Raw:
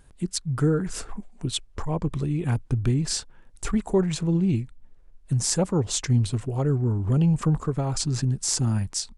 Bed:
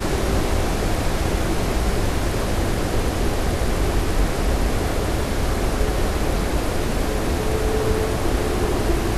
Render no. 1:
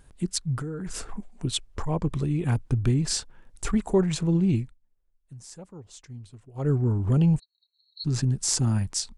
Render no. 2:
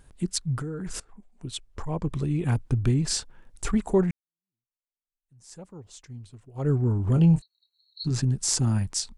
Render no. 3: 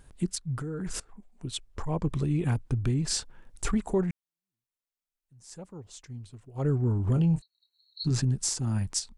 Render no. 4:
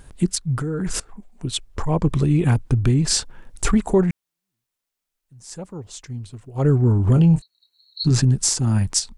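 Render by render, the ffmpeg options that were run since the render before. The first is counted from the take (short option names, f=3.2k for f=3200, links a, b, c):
-filter_complex "[0:a]asettb=1/sr,asplit=3[a][b][c];[a]atrim=end=0.574[d];[b]atrim=start=0.57:end=1.14,asetpts=PTS-STARTPTS,afade=t=in:d=0.004:c=qsin,afade=t=out:st=0.566:d=0.004:c=qsin,acompressor=threshold=-29dB:ratio=12:attack=3.2:release=140:knee=1:detection=peak[e];[c]atrim=start=1.136[f];[d][e]acrossfade=d=0.004:c1=hsin:c2=qsin[g];[g][f]acrossfade=d=0.004:c1=qsin:c2=hsin,asplit=3[h][i][j];[h]afade=t=out:st=7.38:d=0.02[k];[i]asuperpass=centerf=4100:order=20:qfactor=6.4,afade=t=in:st=7.38:d=0.02,afade=t=out:st=8.04:d=0.02[l];[j]afade=t=in:st=8.04:d=0.02[m];[k][l][m]amix=inputs=3:normalize=0,asplit=3[n][o][p];[n]atrim=end=4.78,asetpts=PTS-STARTPTS,afade=t=out:st=4.63:d=0.15:silence=0.0944061[q];[o]atrim=start=4.78:end=6.54,asetpts=PTS-STARTPTS,volume=-20.5dB[r];[p]atrim=start=6.54,asetpts=PTS-STARTPTS,afade=t=in:d=0.15:silence=0.0944061[s];[q][r][s]concat=n=3:v=0:a=1"
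-filter_complex "[0:a]asettb=1/sr,asplit=3[a][b][c];[a]atrim=end=7.134[d];[b]atrim=start=7.13:end=8.11,asetpts=PTS-STARTPTS,afade=t=in:d=0.004:c=qsin,afade=t=out:st=0.976:d=0.004:c=qsin,asplit=2[e][f];[f]adelay=24,volume=-9dB[g];[e][g]amix=inputs=2:normalize=0,atrim=end_sample=43218[h];[c]atrim=start=8.106[i];[d][h]acrossfade=d=0.004:c1=hsin:c2=qsin[j];[j][i]acrossfade=d=0.004:c1=qsin:c2=hsin,asplit=3[k][l][m];[k]atrim=end=1,asetpts=PTS-STARTPTS,afade=t=out:st=0.996:d=0.004:c=hsin:silence=0.0841395[n];[l]atrim=start=1:end=4.11,asetpts=PTS-STARTPTS,afade=t=in:d=1.37:silence=0.0841395,afade=t=out:st=3.106:d=0.004:c=hsin[o];[m]atrim=start=4.11,asetpts=PTS-STARTPTS,afade=t=in:d=1.43:c=exp[p];[n][o][p]concat=n=3:v=0:a=1"
-af "alimiter=limit=-17.5dB:level=0:latency=1:release=454"
-af "volume=9.5dB"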